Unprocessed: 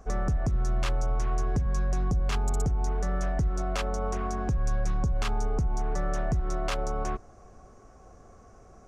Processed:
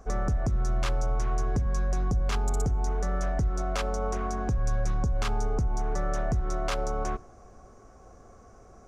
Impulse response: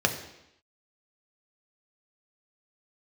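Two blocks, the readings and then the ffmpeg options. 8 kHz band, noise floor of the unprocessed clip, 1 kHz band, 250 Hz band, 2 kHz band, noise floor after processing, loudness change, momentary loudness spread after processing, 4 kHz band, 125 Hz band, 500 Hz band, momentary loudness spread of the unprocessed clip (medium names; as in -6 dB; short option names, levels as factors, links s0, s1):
+1.0 dB, -53 dBFS, +0.5 dB, -0.5 dB, +0.5 dB, -52 dBFS, 0.0 dB, 2 LU, 0.0 dB, 0.0 dB, +1.0 dB, 3 LU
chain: -filter_complex "[0:a]asplit=2[s0][s1];[1:a]atrim=start_sample=2205,highshelf=f=7400:g=10[s2];[s1][s2]afir=irnorm=-1:irlink=0,volume=0.0376[s3];[s0][s3]amix=inputs=2:normalize=0"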